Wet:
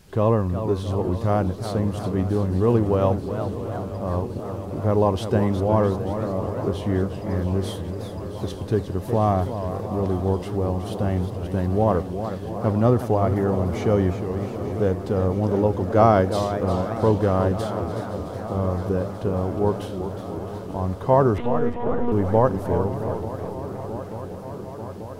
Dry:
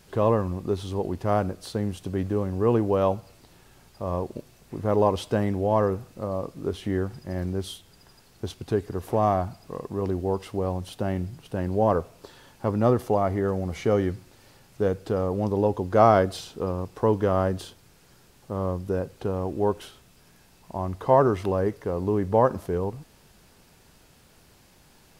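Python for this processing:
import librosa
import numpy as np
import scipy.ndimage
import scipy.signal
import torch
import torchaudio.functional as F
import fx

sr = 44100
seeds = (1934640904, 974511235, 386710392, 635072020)

y = fx.low_shelf(x, sr, hz=240.0, db=6.5)
y = fx.echo_swing(y, sr, ms=888, ratio=3, feedback_pct=75, wet_db=-15)
y = fx.lpc_monotone(y, sr, seeds[0], pitch_hz=240.0, order=10, at=(21.38, 22.12))
y = fx.echo_warbled(y, sr, ms=365, feedback_pct=55, rate_hz=2.8, cents=191, wet_db=-9.5)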